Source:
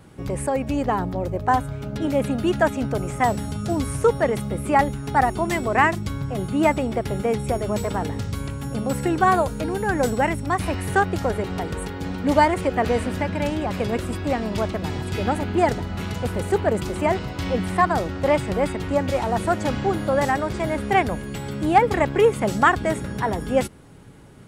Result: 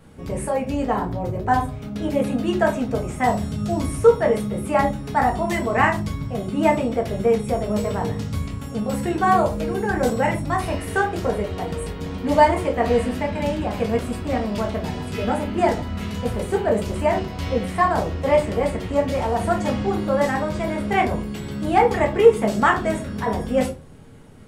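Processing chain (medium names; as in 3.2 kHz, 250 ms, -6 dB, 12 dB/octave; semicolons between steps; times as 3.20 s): simulated room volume 150 m³, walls furnished, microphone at 1.6 m; trim -3.5 dB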